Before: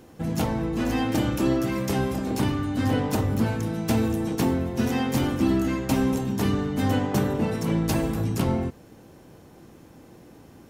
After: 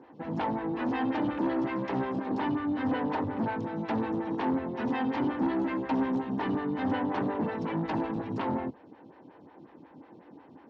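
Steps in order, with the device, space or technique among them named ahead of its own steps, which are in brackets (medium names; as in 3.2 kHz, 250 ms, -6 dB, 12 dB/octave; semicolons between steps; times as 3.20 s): vibe pedal into a guitar amplifier (lamp-driven phase shifter 5.5 Hz; valve stage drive 25 dB, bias 0.35; cabinet simulation 110–3900 Hz, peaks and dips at 280 Hz +6 dB, 920 Hz +9 dB, 1.8 kHz +5 dB); trim -1.5 dB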